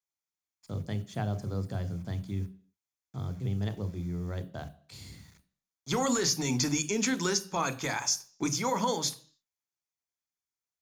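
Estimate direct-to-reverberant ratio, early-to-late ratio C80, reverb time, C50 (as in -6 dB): 12.0 dB, 21.5 dB, 0.50 s, 17.5 dB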